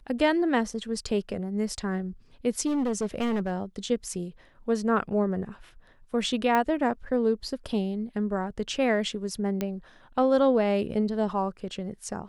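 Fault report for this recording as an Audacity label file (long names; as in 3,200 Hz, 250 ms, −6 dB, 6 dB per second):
2.660000	3.520000	clipping −23.5 dBFS
6.550000	6.550000	click −13 dBFS
9.610000	9.610000	click −15 dBFS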